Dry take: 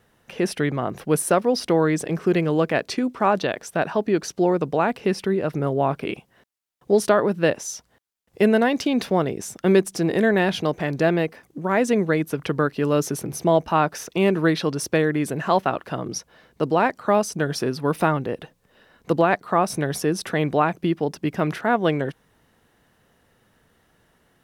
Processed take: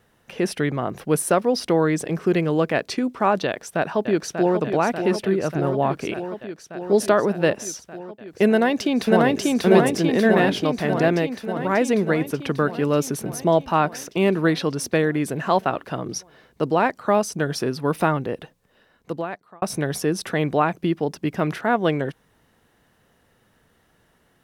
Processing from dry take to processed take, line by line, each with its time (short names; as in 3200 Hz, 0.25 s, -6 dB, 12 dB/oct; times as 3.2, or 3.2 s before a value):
3.46–4.57 echo throw 0.59 s, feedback 80%, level -7.5 dB
8.48–9.4 echo throw 0.59 s, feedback 70%, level 0 dB
18.37–19.62 fade out